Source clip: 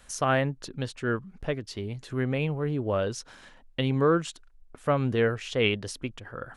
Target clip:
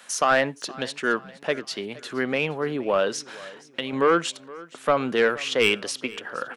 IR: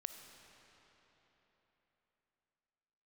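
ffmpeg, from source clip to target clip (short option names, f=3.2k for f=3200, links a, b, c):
-filter_complex "[0:a]highpass=f=180:w=0.5412,highpass=f=180:w=1.3066,lowshelf=f=480:g=-11,asettb=1/sr,asplit=3[a][b][c];[a]atrim=end=3.164[d];[b]atrim=start=3.16:end=3.93,asetpts=PTS-STARTPTS,afade=t=in:d=0.004:c=qsin,afade=t=out:st=0.766:d=0.004:c=qsin,acompressor=threshold=-39dB:ratio=2.5[e];[c]atrim=start=3.926[f];[d][e]acrossfade=d=0.004:c1=hsin:c2=qsin[g];[g][f]acrossfade=d=0.004:c1=qsin:c2=hsin,asoftclip=type=tanh:threshold=-21dB,aecho=1:1:469|938|1407:0.0944|0.0415|0.0183,asplit=2[h][i];[1:a]atrim=start_sample=2205,atrim=end_sample=4410,lowpass=5.8k[j];[i][j]afir=irnorm=-1:irlink=0,volume=-5dB[k];[h][k]amix=inputs=2:normalize=0,volume=8dB"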